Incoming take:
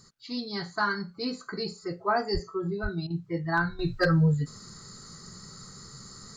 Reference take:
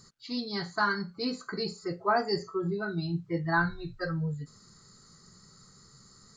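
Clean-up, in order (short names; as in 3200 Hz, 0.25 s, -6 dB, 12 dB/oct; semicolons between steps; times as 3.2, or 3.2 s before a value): clip repair -15 dBFS; 2.33–2.45 HPF 140 Hz 24 dB/oct; 2.82–2.94 HPF 140 Hz 24 dB/oct; interpolate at 3.07, 32 ms; 3.79 gain correction -10 dB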